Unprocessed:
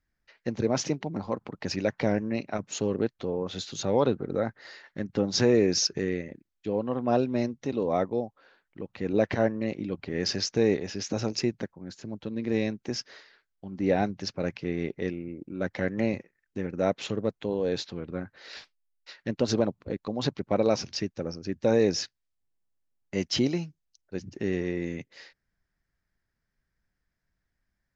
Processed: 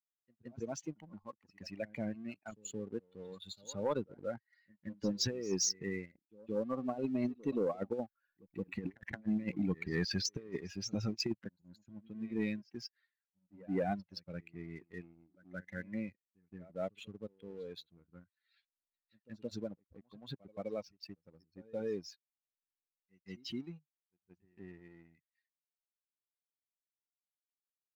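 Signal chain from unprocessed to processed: per-bin expansion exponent 2; Doppler pass-by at 8.88, 9 m/s, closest 4.1 m; negative-ratio compressor -46 dBFS, ratio -0.5; sample leveller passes 1; pre-echo 0.172 s -22 dB; gain +7.5 dB

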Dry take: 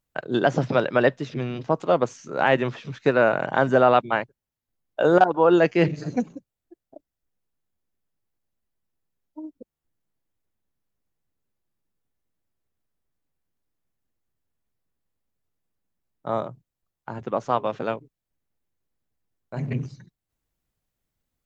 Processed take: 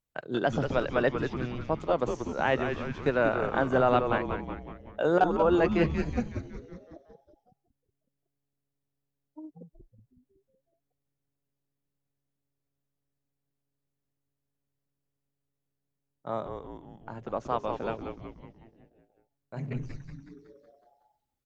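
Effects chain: frequency-shifting echo 0.185 s, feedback 57%, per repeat -140 Hz, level -6.5 dB; gain -7 dB

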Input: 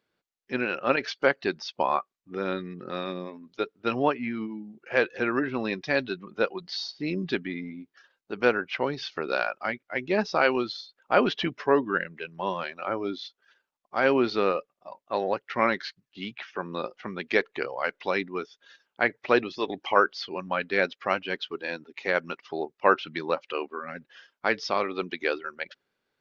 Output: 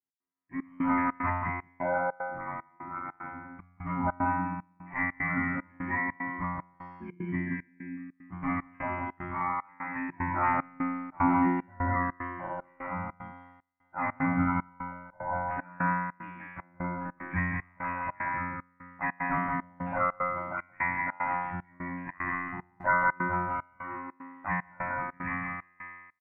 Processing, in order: band inversion scrambler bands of 500 Hz; elliptic low-pass 2000 Hz, stop band 50 dB; bell 200 Hz +7 dB 1.7 oct; resonator 89 Hz, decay 1.3 s, harmonics all, mix 100%; echo 0.176 s -4 dB; AGC gain up to 16 dB; tilt +1.5 dB/oct; 22.77–23.17 added noise brown -56 dBFS; step gate "x.xxxx..xx" 150 bpm -24 dB; gain -3.5 dB

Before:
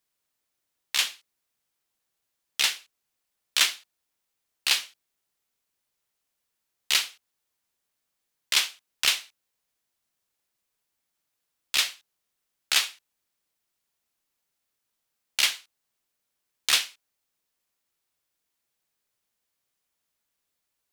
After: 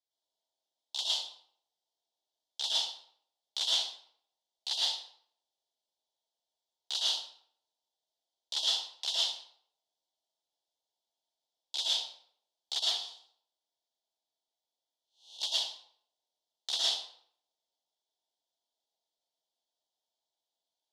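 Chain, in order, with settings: 12.79–15.41 time blur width 0.249 s; elliptic band-stop 880–3400 Hz, stop band 40 dB; overloaded stage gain 17.5 dB; BPF 620–4500 Hz; reverb RT60 0.65 s, pre-delay 0.104 s, DRR -6.5 dB; gain -5.5 dB

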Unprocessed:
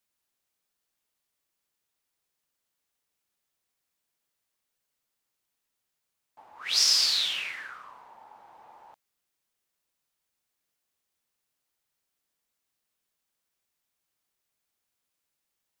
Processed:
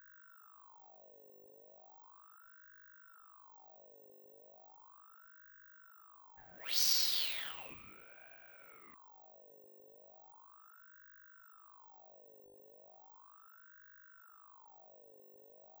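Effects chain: buzz 50 Hz, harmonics 10, -52 dBFS -7 dB/oct; careless resampling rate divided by 2×, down filtered, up zero stuff; ring modulator with a swept carrier 1000 Hz, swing 55%, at 0.36 Hz; gain -8.5 dB

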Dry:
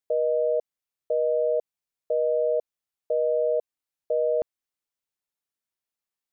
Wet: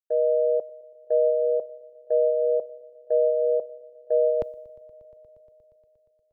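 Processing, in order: on a send: swelling echo 0.118 s, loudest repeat 5, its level -17.5 dB; on the sum: three-band expander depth 100%; gain +2 dB

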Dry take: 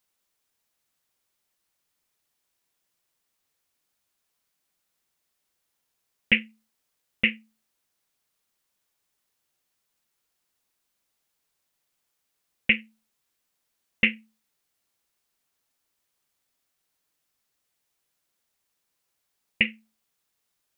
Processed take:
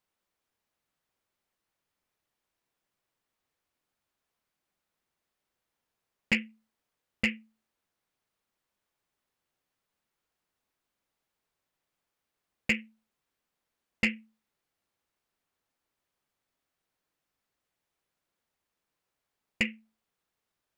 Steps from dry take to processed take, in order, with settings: high shelf 3300 Hz -12 dB; soft clip -16 dBFS, distortion -13 dB

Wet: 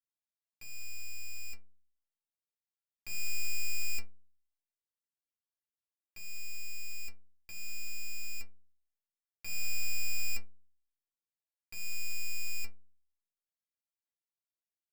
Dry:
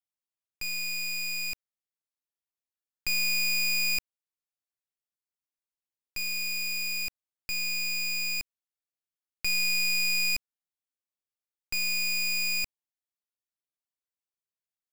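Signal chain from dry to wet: metallic resonator 100 Hz, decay 0.58 s, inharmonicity 0.03; upward expander 1.5:1, over -43 dBFS; gain +8.5 dB

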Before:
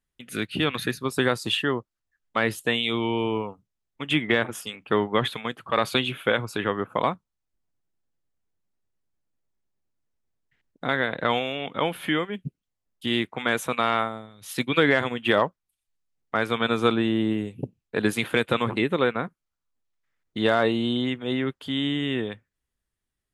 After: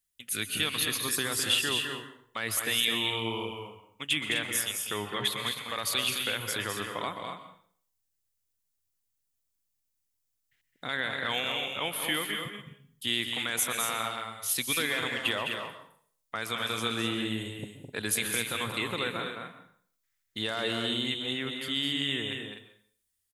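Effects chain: bell 97 Hz +11 dB 0.32 oct; limiter -13 dBFS, peak gain reduction 7 dB; pre-emphasis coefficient 0.9; loudspeakers at several distances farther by 72 m -6 dB, 87 m -9 dB; plate-style reverb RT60 0.54 s, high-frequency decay 0.9×, pre-delay 0.11 s, DRR 10.5 dB; gain +8 dB

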